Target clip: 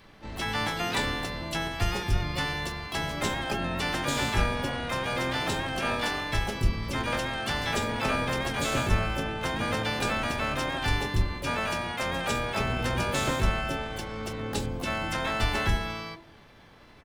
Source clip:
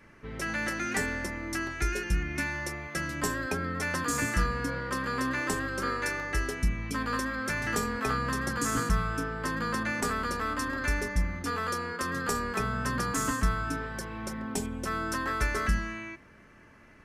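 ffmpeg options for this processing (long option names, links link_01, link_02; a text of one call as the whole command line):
ffmpeg -i in.wav -filter_complex "[0:a]asplit=4[link_01][link_02][link_03][link_04];[link_02]asetrate=22050,aresample=44100,atempo=2,volume=0dB[link_05];[link_03]asetrate=58866,aresample=44100,atempo=0.749154,volume=-7dB[link_06];[link_04]asetrate=88200,aresample=44100,atempo=0.5,volume=-2dB[link_07];[link_01][link_05][link_06][link_07]amix=inputs=4:normalize=0,acrossover=split=9400[link_08][link_09];[link_09]acompressor=threshold=-50dB:ratio=4:attack=1:release=60[link_10];[link_08][link_10]amix=inputs=2:normalize=0,bandreject=frequency=66.21:width_type=h:width=4,bandreject=frequency=132.42:width_type=h:width=4,bandreject=frequency=198.63:width_type=h:width=4,bandreject=frequency=264.84:width_type=h:width=4,bandreject=frequency=331.05:width_type=h:width=4,bandreject=frequency=397.26:width_type=h:width=4,bandreject=frequency=463.47:width_type=h:width=4,bandreject=frequency=529.68:width_type=h:width=4,bandreject=frequency=595.89:width_type=h:width=4,bandreject=frequency=662.1:width_type=h:width=4,bandreject=frequency=728.31:width_type=h:width=4,bandreject=frequency=794.52:width_type=h:width=4,bandreject=frequency=860.73:width_type=h:width=4,bandreject=frequency=926.94:width_type=h:width=4,bandreject=frequency=993.15:width_type=h:width=4,bandreject=frequency=1059.36:width_type=h:width=4,volume=-2dB" out.wav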